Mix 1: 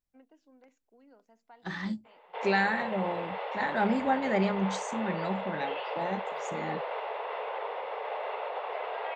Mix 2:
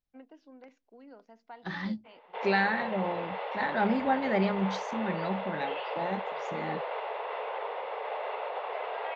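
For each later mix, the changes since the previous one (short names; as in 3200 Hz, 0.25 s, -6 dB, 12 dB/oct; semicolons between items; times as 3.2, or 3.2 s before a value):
first voice +7.5 dB; master: add steep low-pass 5600 Hz 36 dB/oct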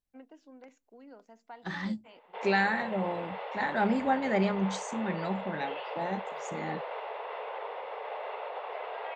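background -3.0 dB; master: remove steep low-pass 5600 Hz 36 dB/oct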